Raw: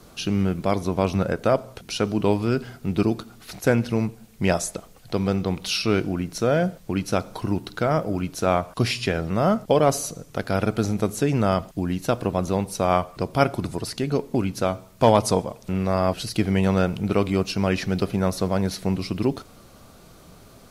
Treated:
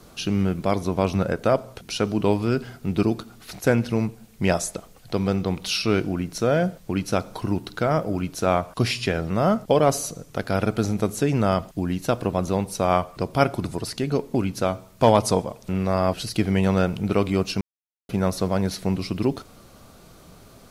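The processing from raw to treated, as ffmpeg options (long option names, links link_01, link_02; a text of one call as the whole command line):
ffmpeg -i in.wav -filter_complex "[0:a]asplit=3[link_01][link_02][link_03];[link_01]atrim=end=17.61,asetpts=PTS-STARTPTS,afade=type=out:start_time=17.606:duration=0.004:curve=hsin[link_04];[link_02]atrim=start=17.61:end=18.09,asetpts=PTS-STARTPTS,volume=0[link_05];[link_03]atrim=start=18.09,asetpts=PTS-STARTPTS,afade=type=in:duration=0.004:curve=hsin[link_06];[link_04][link_05][link_06]concat=n=3:v=0:a=1" out.wav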